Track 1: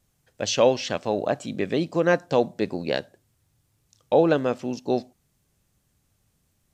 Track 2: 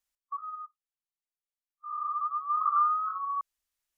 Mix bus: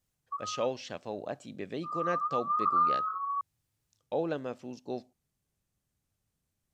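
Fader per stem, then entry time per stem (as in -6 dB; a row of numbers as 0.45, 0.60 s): -13.0, -1.0 dB; 0.00, 0.00 s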